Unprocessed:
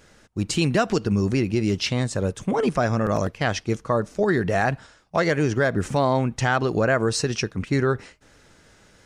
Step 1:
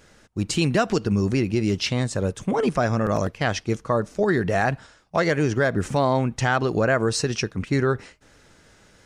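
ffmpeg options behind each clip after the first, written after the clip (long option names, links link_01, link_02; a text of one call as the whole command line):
ffmpeg -i in.wav -af anull out.wav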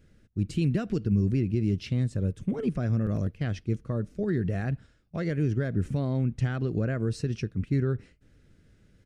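ffmpeg -i in.wav -af "firequalizer=gain_entry='entry(100,0);entry(890,-24);entry(1400,-16);entry(2400,-14);entry(6500,-20);entry(11000,-14)':delay=0.05:min_phase=1" out.wav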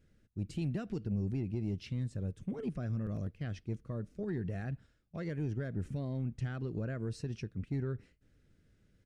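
ffmpeg -i in.wav -af "asoftclip=type=tanh:threshold=-16.5dB,volume=-8.5dB" out.wav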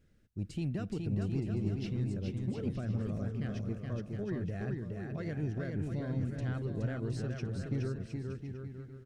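ffmpeg -i in.wav -af "aecho=1:1:420|714|919.8|1064|1165:0.631|0.398|0.251|0.158|0.1" out.wav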